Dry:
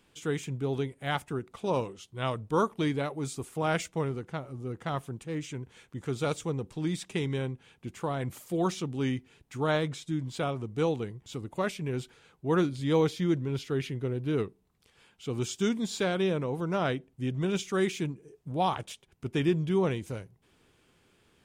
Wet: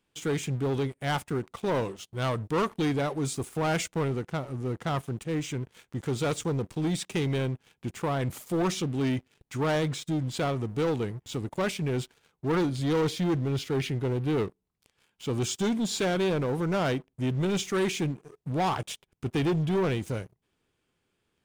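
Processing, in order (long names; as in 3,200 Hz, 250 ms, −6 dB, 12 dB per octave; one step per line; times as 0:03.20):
leveller curve on the samples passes 3
level −5.5 dB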